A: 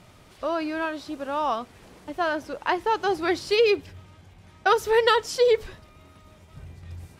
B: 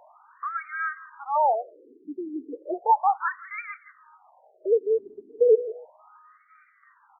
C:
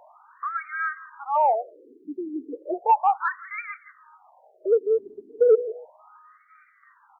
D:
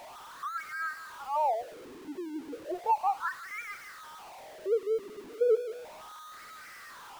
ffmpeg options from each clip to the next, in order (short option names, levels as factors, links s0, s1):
-af "equalizer=f=870:t=o:w=1.7:g=7,aecho=1:1:168|336|504:0.141|0.041|0.0119,afftfilt=real='re*between(b*sr/1024,290*pow(1700/290,0.5+0.5*sin(2*PI*0.34*pts/sr))/1.41,290*pow(1700/290,0.5+0.5*sin(2*PI*0.34*pts/sr))*1.41)':imag='im*between(b*sr/1024,290*pow(1700/290,0.5+0.5*sin(2*PI*0.34*pts/sr))/1.41,290*pow(1700/290,0.5+0.5*sin(2*PI*0.34*pts/sr))*1.41)':win_size=1024:overlap=0.75"
-af "acontrast=41,volume=0.631"
-af "aeval=exprs='val(0)+0.5*0.0188*sgn(val(0))':c=same,volume=0.376"